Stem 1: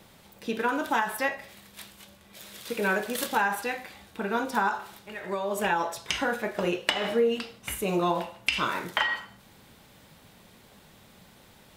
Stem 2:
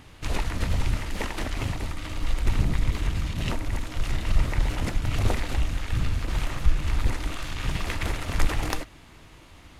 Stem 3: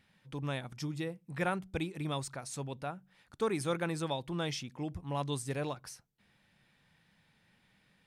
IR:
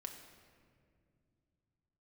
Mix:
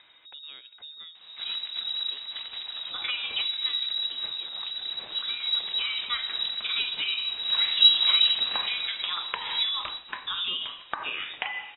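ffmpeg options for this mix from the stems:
-filter_complex "[0:a]tiltshelf=frequency=810:gain=-6,acompressor=threshold=-29dB:ratio=10,adelay=2450,volume=2.5dB[link_01];[1:a]adelay=1150,volume=-1.5dB,afade=type=in:start_time=7.34:duration=0.25:silence=0.354813,afade=type=out:start_time=8.59:duration=0.3:silence=0.281838,asplit=2[link_02][link_03];[link_03]volume=-9.5dB[link_04];[2:a]bandreject=frequency=413.5:width_type=h:width=4,bandreject=frequency=827:width_type=h:width=4,bandreject=frequency=1240.5:width_type=h:width=4,bandreject=frequency=1654:width_type=h:width=4,bandreject=frequency=2067.5:width_type=h:width=4,bandreject=frequency=2481:width_type=h:width=4,bandreject=frequency=2894.5:width_type=h:width=4,bandreject=frequency=3308:width_type=h:width=4,bandreject=frequency=3721.5:width_type=h:width=4,bandreject=frequency=4135:width_type=h:width=4,bandreject=frequency=4548.5:width_type=h:width=4,bandreject=frequency=4962:width_type=h:width=4,bandreject=frequency=5375.5:width_type=h:width=4,bandreject=frequency=5789:width_type=h:width=4,bandreject=frequency=6202.5:width_type=h:width=4,bandreject=frequency=6616:width_type=h:width=4,bandreject=frequency=7029.5:width_type=h:width=4,bandreject=frequency=7443:width_type=h:width=4,bandreject=frequency=7856.5:width_type=h:width=4,bandreject=frequency=8270:width_type=h:width=4,bandreject=frequency=8683.5:width_type=h:width=4,bandreject=frequency=9097:width_type=h:width=4,bandreject=frequency=9510.5:width_type=h:width=4,bandreject=frequency=9924:width_type=h:width=4,bandreject=frequency=10337.5:width_type=h:width=4,bandreject=frequency=10751:width_type=h:width=4,bandreject=frequency=11164.5:width_type=h:width=4,bandreject=frequency=11578:width_type=h:width=4,bandreject=frequency=11991.5:width_type=h:width=4,bandreject=frequency=12405:width_type=h:width=4,bandreject=frequency=12818.5:width_type=h:width=4,bandreject=frequency=13232:width_type=h:width=4,bandreject=frequency=13645.5:width_type=h:width=4,bandreject=frequency=14059:width_type=h:width=4,bandreject=frequency=14472.5:width_type=h:width=4,bandreject=frequency=14886:width_type=h:width=4,bandreject=frequency=15299.5:width_type=h:width=4,bandreject=frequency=15713:width_type=h:width=4,bandreject=frequency=16126.5:width_type=h:width=4,volume=-10.5dB,asplit=3[link_05][link_06][link_07];[link_06]volume=-15dB[link_08];[link_07]apad=whole_len=626897[link_09];[link_01][link_09]sidechaincompress=threshold=-51dB:ratio=8:attack=16:release=223[link_10];[3:a]atrim=start_sample=2205[link_11];[link_04][link_08]amix=inputs=2:normalize=0[link_12];[link_12][link_11]afir=irnorm=-1:irlink=0[link_13];[link_10][link_02][link_05][link_13]amix=inputs=4:normalize=0,equalizer=frequency=2000:width=2:gain=-3.5,acompressor=mode=upward:threshold=-38dB:ratio=2.5,lowpass=frequency=3300:width_type=q:width=0.5098,lowpass=frequency=3300:width_type=q:width=0.6013,lowpass=frequency=3300:width_type=q:width=0.9,lowpass=frequency=3300:width_type=q:width=2.563,afreqshift=-3900"

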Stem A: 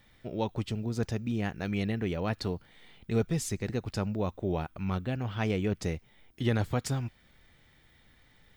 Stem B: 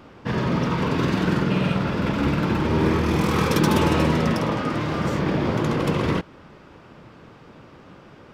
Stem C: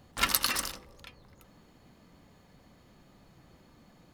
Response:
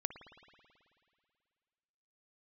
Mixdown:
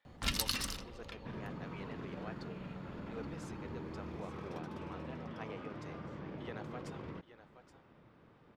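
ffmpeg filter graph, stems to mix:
-filter_complex "[0:a]highpass=540,volume=-11dB,asplit=2[link_01][link_02];[link_02]volume=-13dB[link_03];[1:a]acompressor=threshold=-27dB:ratio=4,adelay=1000,volume=-16dB[link_04];[2:a]acrossover=split=240|3000[link_05][link_06][link_07];[link_06]acompressor=threshold=-49dB:ratio=4[link_08];[link_05][link_08][link_07]amix=inputs=3:normalize=0,adelay=50,volume=0.5dB,asplit=2[link_09][link_10];[link_10]volume=-5.5dB[link_11];[3:a]atrim=start_sample=2205[link_12];[link_11][link_12]afir=irnorm=-1:irlink=0[link_13];[link_03]aecho=0:1:824:1[link_14];[link_01][link_04][link_09][link_13][link_14]amix=inputs=5:normalize=0,aemphasis=mode=reproduction:type=75kf"

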